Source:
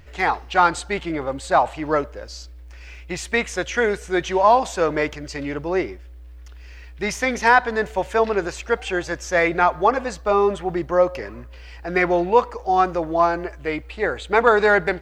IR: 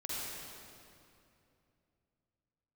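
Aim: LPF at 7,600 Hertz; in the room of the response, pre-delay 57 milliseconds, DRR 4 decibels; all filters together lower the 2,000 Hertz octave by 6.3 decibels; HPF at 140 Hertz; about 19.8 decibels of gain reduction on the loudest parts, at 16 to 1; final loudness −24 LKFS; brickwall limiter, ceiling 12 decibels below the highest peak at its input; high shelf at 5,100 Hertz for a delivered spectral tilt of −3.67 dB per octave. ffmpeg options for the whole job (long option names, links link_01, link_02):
-filter_complex "[0:a]highpass=140,lowpass=7600,equalizer=frequency=2000:width_type=o:gain=-9,highshelf=frequency=5100:gain=3.5,acompressor=threshold=-31dB:ratio=16,alimiter=level_in=7dB:limit=-24dB:level=0:latency=1,volume=-7dB,asplit=2[link_01][link_02];[1:a]atrim=start_sample=2205,adelay=57[link_03];[link_02][link_03]afir=irnorm=-1:irlink=0,volume=-6.5dB[link_04];[link_01][link_04]amix=inputs=2:normalize=0,volume=15.5dB"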